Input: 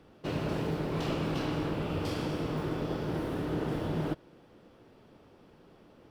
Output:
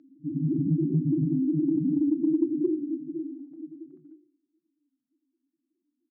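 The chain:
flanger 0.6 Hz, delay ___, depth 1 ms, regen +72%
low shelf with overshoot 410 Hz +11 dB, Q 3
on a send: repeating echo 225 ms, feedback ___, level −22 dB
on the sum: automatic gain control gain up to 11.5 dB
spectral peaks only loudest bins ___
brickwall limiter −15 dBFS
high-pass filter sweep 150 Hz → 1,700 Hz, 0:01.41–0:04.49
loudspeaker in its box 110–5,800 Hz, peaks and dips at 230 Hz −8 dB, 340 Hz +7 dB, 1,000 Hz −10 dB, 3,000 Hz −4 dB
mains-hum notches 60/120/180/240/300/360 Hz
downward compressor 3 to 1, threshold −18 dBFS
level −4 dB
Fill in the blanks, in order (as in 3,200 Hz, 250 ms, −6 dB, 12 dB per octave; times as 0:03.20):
7.4 ms, 44%, 2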